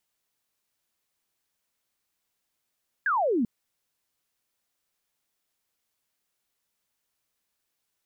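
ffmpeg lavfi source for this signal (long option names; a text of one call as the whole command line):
ffmpeg -f lavfi -i "aevalsrc='0.0841*clip(t/0.002,0,1)*clip((0.39-t)/0.002,0,1)*sin(2*PI*1700*0.39/log(210/1700)*(exp(log(210/1700)*t/0.39)-1))':duration=0.39:sample_rate=44100" out.wav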